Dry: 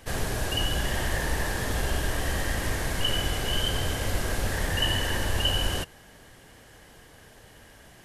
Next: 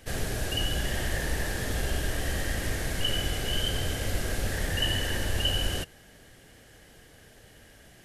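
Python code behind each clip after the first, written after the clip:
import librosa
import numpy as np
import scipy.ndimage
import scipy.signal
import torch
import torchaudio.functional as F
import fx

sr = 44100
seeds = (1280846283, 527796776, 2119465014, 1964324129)

y = fx.peak_eq(x, sr, hz=1000.0, db=-8.5, octaves=0.56)
y = F.gain(torch.from_numpy(y), -1.5).numpy()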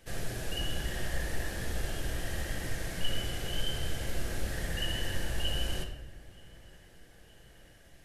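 y = fx.echo_wet_lowpass(x, sr, ms=924, feedback_pct=62, hz=2700.0, wet_db=-23)
y = fx.room_shoebox(y, sr, seeds[0], volume_m3=450.0, walls='mixed', distance_m=0.78)
y = F.gain(torch.from_numpy(y), -7.5).numpy()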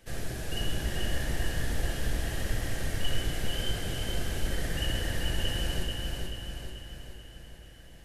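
y = fx.octave_divider(x, sr, octaves=1, level_db=0.0)
y = fx.echo_feedback(y, sr, ms=435, feedback_pct=53, wet_db=-3.5)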